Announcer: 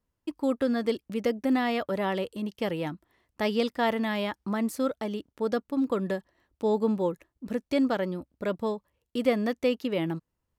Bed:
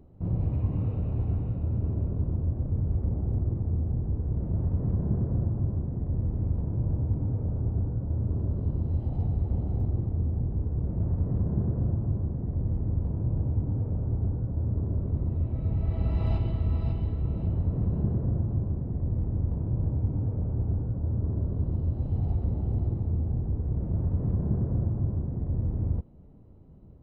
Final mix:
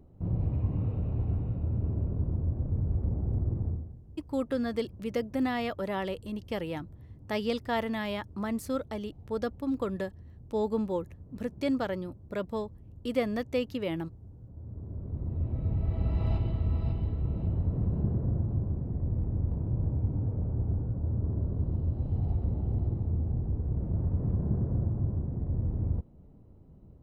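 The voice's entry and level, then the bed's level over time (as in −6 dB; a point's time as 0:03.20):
3.90 s, −4.0 dB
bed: 0:03.68 −2 dB
0:03.99 −21.5 dB
0:14.23 −21.5 dB
0:15.49 −2 dB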